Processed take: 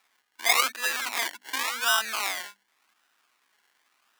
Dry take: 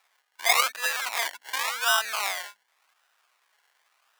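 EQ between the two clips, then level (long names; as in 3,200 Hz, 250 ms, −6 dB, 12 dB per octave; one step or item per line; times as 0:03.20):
low shelf with overshoot 380 Hz +12.5 dB, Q 1.5
0.0 dB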